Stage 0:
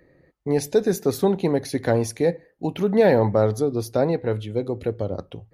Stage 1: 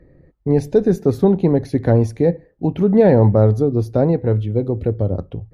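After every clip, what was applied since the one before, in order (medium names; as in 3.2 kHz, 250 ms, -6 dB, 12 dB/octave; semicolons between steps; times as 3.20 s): tilt EQ -3.5 dB/octave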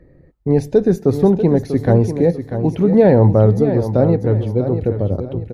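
feedback delay 642 ms, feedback 32%, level -9.5 dB; trim +1 dB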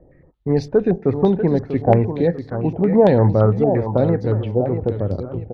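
step-sequenced low-pass 8.8 Hz 760–4600 Hz; trim -3.5 dB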